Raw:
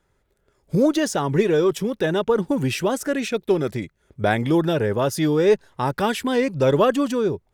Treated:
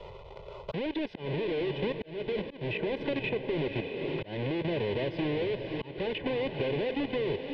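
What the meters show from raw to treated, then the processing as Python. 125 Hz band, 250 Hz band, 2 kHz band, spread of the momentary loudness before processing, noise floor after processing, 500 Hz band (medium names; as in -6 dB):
-10.5 dB, -12.0 dB, -8.5 dB, 6 LU, -47 dBFS, -11.0 dB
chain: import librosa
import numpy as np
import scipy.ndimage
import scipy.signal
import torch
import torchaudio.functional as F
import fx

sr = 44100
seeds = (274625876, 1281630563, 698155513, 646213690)

y = fx.halfwave_hold(x, sr)
y = y + 0.57 * np.pad(y, (int(2.0 * sr / 1000.0), 0))[:len(y)]
y = 10.0 ** (-20.0 / 20.0) * np.tanh(y / 10.0 ** (-20.0 / 20.0))
y = fx.low_shelf(y, sr, hz=220.0, db=-6.0)
y = fx.env_phaser(y, sr, low_hz=260.0, high_hz=1300.0, full_db=-31.0)
y = fx.dynamic_eq(y, sr, hz=400.0, q=2.3, threshold_db=-37.0, ratio=4.0, max_db=3)
y = fx.level_steps(y, sr, step_db=14)
y = fx.echo_diffused(y, sr, ms=537, feedback_pct=43, wet_db=-9)
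y = fx.auto_swell(y, sr, attack_ms=729.0)
y = scipy.signal.sosfilt(scipy.signal.butter(4, 3200.0, 'lowpass', fs=sr, output='sos'), y)
y = fx.band_squash(y, sr, depth_pct=100)
y = y * librosa.db_to_amplitude(-1.5)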